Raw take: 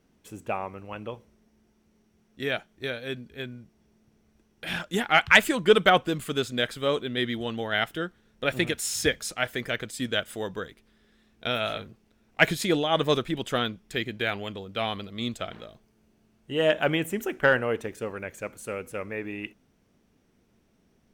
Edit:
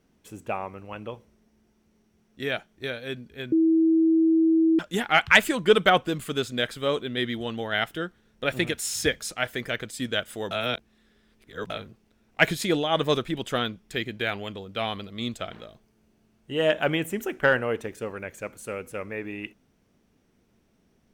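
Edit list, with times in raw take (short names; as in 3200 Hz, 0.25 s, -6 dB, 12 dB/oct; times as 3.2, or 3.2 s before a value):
3.52–4.79 bleep 324 Hz -16.5 dBFS
10.51–11.7 reverse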